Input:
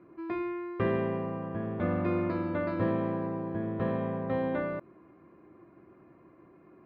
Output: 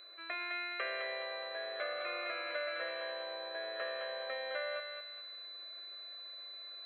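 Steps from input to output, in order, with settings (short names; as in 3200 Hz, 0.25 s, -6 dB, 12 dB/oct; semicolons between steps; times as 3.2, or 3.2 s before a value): elliptic high-pass 600 Hz, stop band 80 dB; compressor, threshold -40 dBFS, peak gain reduction 8.5 dB; whine 4000 Hz -53 dBFS; fixed phaser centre 2200 Hz, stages 4; thinning echo 0.209 s, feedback 41%, high-pass 990 Hz, level -3.5 dB; gain +9 dB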